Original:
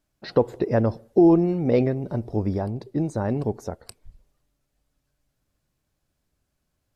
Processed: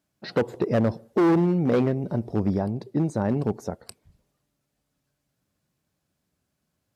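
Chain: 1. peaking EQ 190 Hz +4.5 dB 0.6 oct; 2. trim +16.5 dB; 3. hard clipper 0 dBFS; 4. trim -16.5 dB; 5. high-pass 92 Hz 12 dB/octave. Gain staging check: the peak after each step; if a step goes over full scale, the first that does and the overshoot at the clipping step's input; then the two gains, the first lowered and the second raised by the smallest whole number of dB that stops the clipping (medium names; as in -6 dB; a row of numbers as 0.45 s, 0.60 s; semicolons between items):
-7.0 dBFS, +9.5 dBFS, 0.0 dBFS, -16.5 dBFS, -11.0 dBFS; step 2, 9.5 dB; step 2 +6.5 dB, step 4 -6.5 dB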